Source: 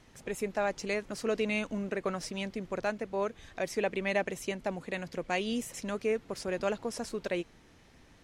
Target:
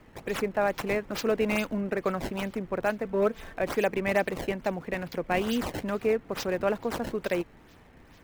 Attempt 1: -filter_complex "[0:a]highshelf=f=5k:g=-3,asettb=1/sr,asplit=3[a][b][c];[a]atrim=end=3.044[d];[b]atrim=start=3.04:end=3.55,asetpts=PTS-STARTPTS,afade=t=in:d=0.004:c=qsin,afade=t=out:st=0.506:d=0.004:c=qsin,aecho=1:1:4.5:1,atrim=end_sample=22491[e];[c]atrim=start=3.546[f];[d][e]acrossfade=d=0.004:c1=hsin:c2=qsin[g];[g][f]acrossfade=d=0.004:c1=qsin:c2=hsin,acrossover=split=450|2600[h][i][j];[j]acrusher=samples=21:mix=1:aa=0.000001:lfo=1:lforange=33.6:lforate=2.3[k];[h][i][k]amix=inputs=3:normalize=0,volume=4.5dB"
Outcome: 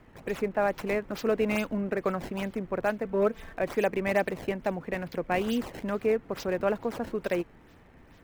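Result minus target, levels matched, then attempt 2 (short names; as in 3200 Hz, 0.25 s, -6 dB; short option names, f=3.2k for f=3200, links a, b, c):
8000 Hz band -4.5 dB
-filter_complex "[0:a]highshelf=f=5k:g=7.5,asettb=1/sr,asplit=3[a][b][c];[a]atrim=end=3.044[d];[b]atrim=start=3.04:end=3.55,asetpts=PTS-STARTPTS,afade=t=in:d=0.004:c=qsin,afade=t=out:st=0.506:d=0.004:c=qsin,aecho=1:1:4.5:1,atrim=end_sample=22491[e];[c]atrim=start=3.546[f];[d][e]acrossfade=d=0.004:c1=hsin:c2=qsin[g];[g][f]acrossfade=d=0.004:c1=qsin:c2=hsin,acrossover=split=450|2600[h][i][j];[j]acrusher=samples=21:mix=1:aa=0.000001:lfo=1:lforange=33.6:lforate=2.3[k];[h][i][k]amix=inputs=3:normalize=0,volume=4.5dB"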